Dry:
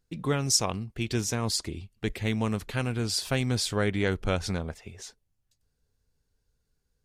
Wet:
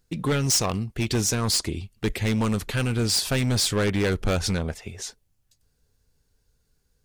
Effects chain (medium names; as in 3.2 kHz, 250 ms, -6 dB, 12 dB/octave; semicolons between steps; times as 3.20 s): treble shelf 5.3 kHz +3.5 dB; hard clipper -25 dBFS, distortion -8 dB; trim +6.5 dB